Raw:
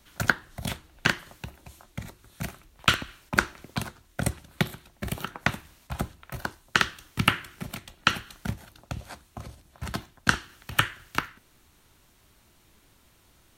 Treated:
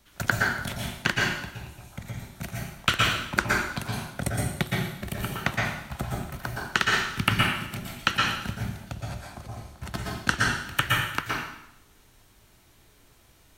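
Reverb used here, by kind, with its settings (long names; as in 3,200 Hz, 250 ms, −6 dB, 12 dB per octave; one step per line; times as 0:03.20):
dense smooth reverb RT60 0.8 s, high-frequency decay 0.95×, pre-delay 105 ms, DRR −3 dB
level −2.5 dB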